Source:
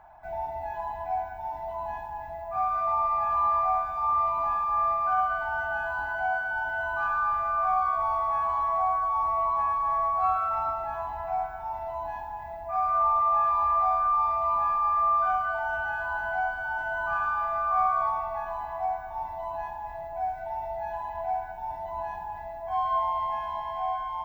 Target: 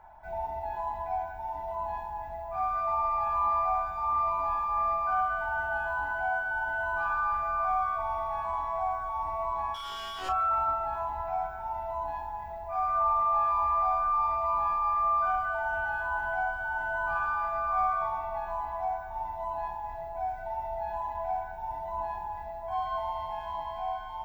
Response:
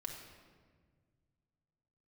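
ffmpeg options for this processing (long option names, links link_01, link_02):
-filter_complex "[0:a]asettb=1/sr,asplit=3[link_01][link_02][link_03];[link_01]atrim=end=9.744[link_04];[link_02]atrim=start=9.74:end=10.29,asetpts=PTS-STARTPTS,afade=type=in:duration=0.004:curve=qsin,afade=type=out:start_time=0.546:duration=0.004:curve=qsin,volume=30.5dB,asoftclip=hard,volume=-30.5dB[link_05];[link_03]atrim=start=10.286[link_06];[link_04][link_05]acrossfade=duration=0.004:curve1=hsin:curve2=qsin[link_07];[link_07][link_06]acrossfade=duration=0.004:curve1=qsin:curve2=hsin[link_08];[1:a]atrim=start_sample=2205,atrim=end_sample=3528,asetrate=83790,aresample=44100[link_09];[link_08][link_09]afir=irnorm=-1:irlink=0,volume=7.5dB"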